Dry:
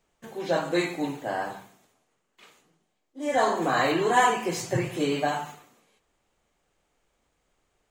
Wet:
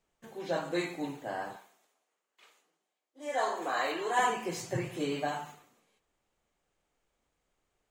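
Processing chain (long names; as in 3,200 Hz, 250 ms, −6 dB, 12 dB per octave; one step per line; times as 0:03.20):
0:01.56–0:04.19: high-pass filter 430 Hz 12 dB per octave
level −7 dB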